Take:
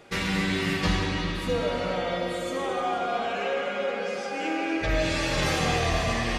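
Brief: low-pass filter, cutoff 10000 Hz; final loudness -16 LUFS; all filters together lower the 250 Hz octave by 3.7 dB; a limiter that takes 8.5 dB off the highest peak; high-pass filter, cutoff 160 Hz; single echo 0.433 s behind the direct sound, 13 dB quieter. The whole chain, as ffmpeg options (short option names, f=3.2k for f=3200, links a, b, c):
-af "highpass=160,lowpass=10k,equalizer=f=250:t=o:g=-4,alimiter=limit=-22.5dB:level=0:latency=1,aecho=1:1:433:0.224,volume=14.5dB"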